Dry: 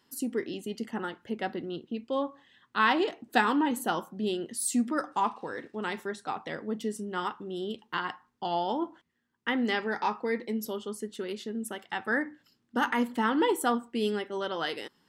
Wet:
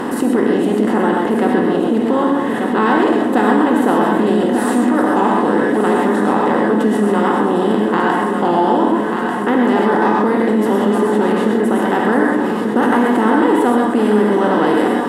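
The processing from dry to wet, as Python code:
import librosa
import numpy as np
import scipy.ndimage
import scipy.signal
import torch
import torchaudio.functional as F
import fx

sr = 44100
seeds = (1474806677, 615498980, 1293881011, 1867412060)

y = fx.bin_compress(x, sr, power=0.4)
y = fx.tilt_shelf(y, sr, db=9.0, hz=1500.0)
y = fx.echo_feedback(y, sr, ms=1190, feedback_pct=55, wet_db=-9)
y = fx.rev_gated(y, sr, seeds[0], gate_ms=150, shape='rising', drr_db=0.5)
y = fx.env_flatten(y, sr, amount_pct=50)
y = y * librosa.db_to_amplitude(-2.5)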